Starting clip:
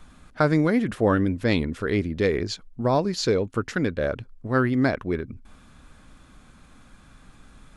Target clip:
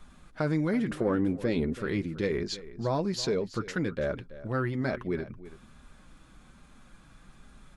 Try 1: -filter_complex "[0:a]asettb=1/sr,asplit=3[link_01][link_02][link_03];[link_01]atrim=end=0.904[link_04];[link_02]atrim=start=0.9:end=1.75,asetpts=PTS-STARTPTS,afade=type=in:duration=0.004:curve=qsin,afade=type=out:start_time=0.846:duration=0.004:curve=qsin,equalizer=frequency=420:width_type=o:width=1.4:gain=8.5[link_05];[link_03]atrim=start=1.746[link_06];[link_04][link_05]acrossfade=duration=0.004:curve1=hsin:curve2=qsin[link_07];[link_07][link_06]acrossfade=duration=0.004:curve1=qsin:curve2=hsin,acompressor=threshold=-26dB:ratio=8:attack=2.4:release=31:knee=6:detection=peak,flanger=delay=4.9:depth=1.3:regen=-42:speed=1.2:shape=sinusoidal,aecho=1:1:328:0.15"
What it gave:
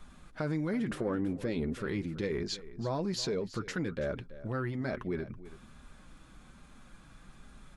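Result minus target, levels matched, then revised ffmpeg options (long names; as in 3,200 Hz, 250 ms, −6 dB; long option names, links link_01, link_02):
downward compressor: peak gain reduction +5.5 dB
-filter_complex "[0:a]asettb=1/sr,asplit=3[link_01][link_02][link_03];[link_01]atrim=end=0.904[link_04];[link_02]atrim=start=0.9:end=1.75,asetpts=PTS-STARTPTS,afade=type=in:duration=0.004:curve=qsin,afade=type=out:start_time=0.846:duration=0.004:curve=qsin,equalizer=frequency=420:width_type=o:width=1.4:gain=8.5[link_05];[link_03]atrim=start=1.746[link_06];[link_04][link_05]acrossfade=duration=0.004:curve1=hsin:curve2=qsin[link_07];[link_07][link_06]acrossfade=duration=0.004:curve1=qsin:curve2=hsin,acompressor=threshold=-19.5dB:ratio=8:attack=2.4:release=31:knee=6:detection=peak,flanger=delay=4.9:depth=1.3:regen=-42:speed=1.2:shape=sinusoidal,aecho=1:1:328:0.15"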